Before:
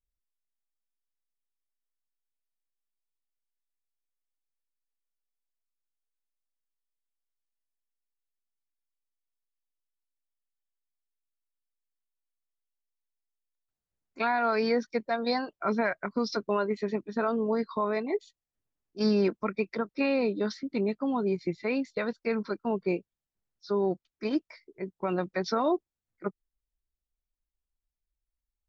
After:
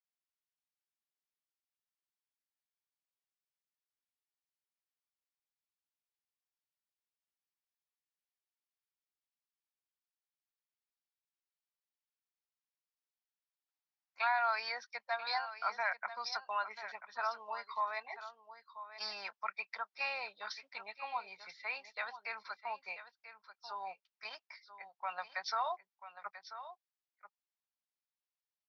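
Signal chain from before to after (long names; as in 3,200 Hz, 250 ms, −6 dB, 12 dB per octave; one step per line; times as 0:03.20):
elliptic band-pass filter 790–5,500 Hz, stop band 40 dB
on a send: single-tap delay 988 ms −12.5 dB
on the sum: level −2.5 dB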